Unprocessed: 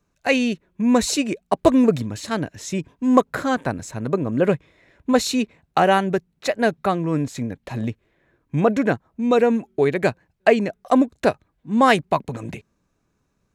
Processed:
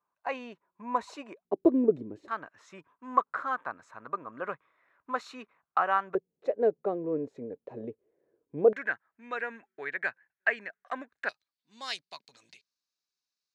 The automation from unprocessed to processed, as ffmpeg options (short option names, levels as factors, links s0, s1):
-af "asetnsamples=n=441:p=0,asendcmd='1.45 bandpass f 370;2.28 bandpass f 1200;6.15 bandpass f 450;8.73 bandpass f 1700;11.29 bandpass f 4600',bandpass=f=1000:t=q:w=4.3:csg=0"